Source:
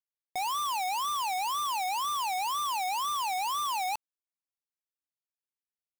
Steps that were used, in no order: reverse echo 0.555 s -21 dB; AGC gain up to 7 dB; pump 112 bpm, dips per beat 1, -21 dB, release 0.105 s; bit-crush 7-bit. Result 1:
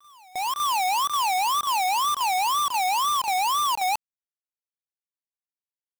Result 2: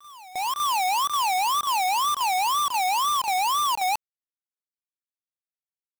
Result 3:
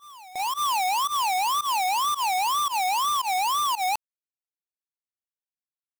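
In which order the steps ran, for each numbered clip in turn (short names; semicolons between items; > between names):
pump > bit-crush > reverse echo > AGC; pump > bit-crush > AGC > reverse echo; AGC > bit-crush > pump > reverse echo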